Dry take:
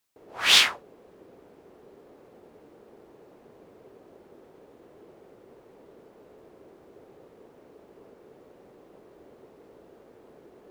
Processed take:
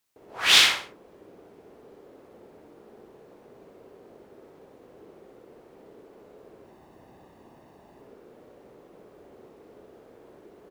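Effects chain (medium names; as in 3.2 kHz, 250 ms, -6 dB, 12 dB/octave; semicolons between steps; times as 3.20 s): 6.64–8.01 s: comb 1.1 ms, depth 57%; feedback delay 62 ms, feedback 34%, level -4.5 dB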